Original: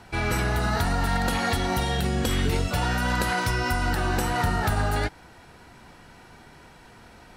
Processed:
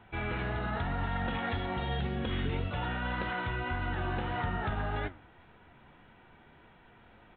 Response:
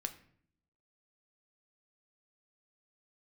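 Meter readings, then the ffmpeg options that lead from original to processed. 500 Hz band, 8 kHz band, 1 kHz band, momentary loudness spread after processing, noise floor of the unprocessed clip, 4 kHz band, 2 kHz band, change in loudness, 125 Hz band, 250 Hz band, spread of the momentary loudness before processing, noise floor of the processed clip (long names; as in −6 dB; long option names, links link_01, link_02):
−8.5 dB, below −40 dB, −8.5 dB, 1 LU, −50 dBFS, −11.0 dB, −8.5 dB, −9.0 dB, −8.0 dB, −8.5 dB, 1 LU, −59 dBFS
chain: -filter_complex "[0:a]asplit=2[link_01][link_02];[1:a]atrim=start_sample=2205[link_03];[link_02][link_03]afir=irnorm=-1:irlink=0,volume=-8.5dB[link_04];[link_01][link_04]amix=inputs=2:normalize=0,aresample=8000,aresample=44100,flanger=delay=8.9:depth=6.3:regen=76:speed=1.8:shape=sinusoidal,volume=-6.5dB"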